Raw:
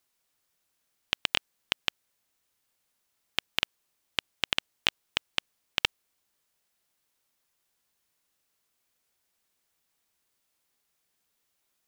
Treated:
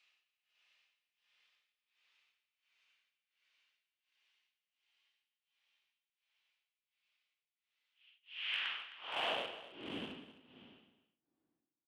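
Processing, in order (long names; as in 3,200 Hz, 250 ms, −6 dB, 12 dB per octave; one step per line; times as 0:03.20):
low-pass filter 4,600 Hz
reversed playback
downward compressor 8 to 1, threshold −35 dBFS, peak gain reduction 15 dB
reversed playback
extreme stretch with random phases 32×, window 0.10 s, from 0:03.89
amplitude tremolo 1.4 Hz, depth 99%
in parallel at −7.5 dB: bit reduction 6 bits
on the sum: band-pass filter sweep 2,700 Hz → 250 Hz, 0:08.30–0:09.99
single-tap delay 261 ms −15 dB
level +16 dB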